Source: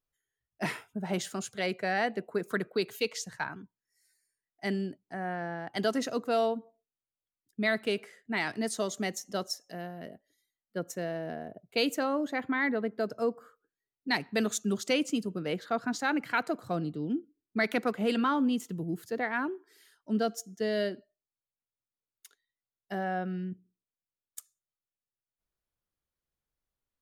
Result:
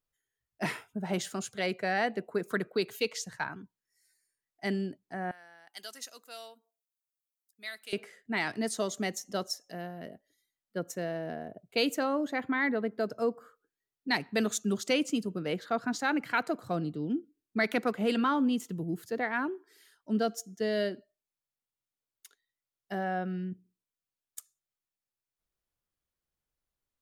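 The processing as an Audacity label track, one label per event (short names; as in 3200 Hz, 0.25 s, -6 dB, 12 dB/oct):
5.310000	7.930000	differentiator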